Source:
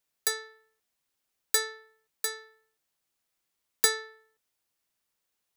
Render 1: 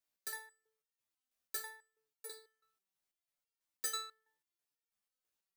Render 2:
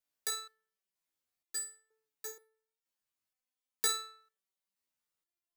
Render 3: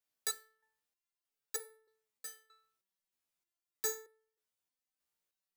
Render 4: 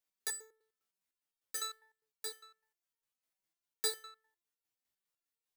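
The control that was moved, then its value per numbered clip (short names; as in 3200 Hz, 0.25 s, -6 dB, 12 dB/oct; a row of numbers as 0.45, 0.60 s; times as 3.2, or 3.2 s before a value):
stepped resonator, rate: 6.1, 2.1, 3.2, 9.9 Hz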